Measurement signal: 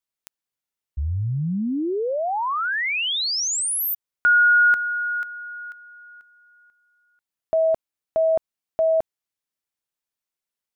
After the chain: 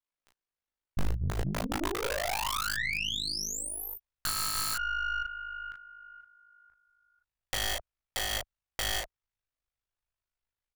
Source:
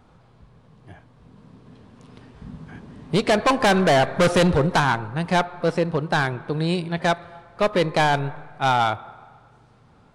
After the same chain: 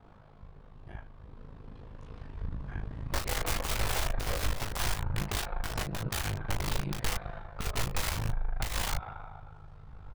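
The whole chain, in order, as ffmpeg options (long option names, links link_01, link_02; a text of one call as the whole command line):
ffmpeg -i in.wav -filter_complex "[0:a]lowpass=frequency=1800:poles=1,equalizer=frequency=190:width=0.3:gain=-3.5,asplit=2[link_01][link_02];[link_02]adelay=15,volume=-14dB[link_03];[link_01][link_03]amix=inputs=2:normalize=0,aeval=exprs='val(0)*sin(2*PI*26*n/s)':channel_layout=same,aeval=exprs='(mod(15.8*val(0)+1,2)-1)/15.8':channel_layout=same,aecho=1:1:20|36:0.631|0.668,asubboost=boost=11.5:cutoff=73,acompressor=threshold=-29dB:ratio=6:attack=1.4:release=204:knee=6:detection=peak,aeval=exprs='0.0841*(cos(1*acos(clip(val(0)/0.0841,-1,1)))-cos(1*PI/2))+0.0211*(cos(2*acos(clip(val(0)/0.0841,-1,1)))-cos(2*PI/2))+0.0075*(cos(3*acos(clip(val(0)/0.0841,-1,1)))-cos(3*PI/2))+0.00422*(cos(4*acos(clip(val(0)/0.0841,-1,1)))-cos(4*PI/2))+0.00531*(cos(6*acos(clip(val(0)/0.0841,-1,1)))-cos(6*PI/2))':channel_layout=same,volume=4dB" out.wav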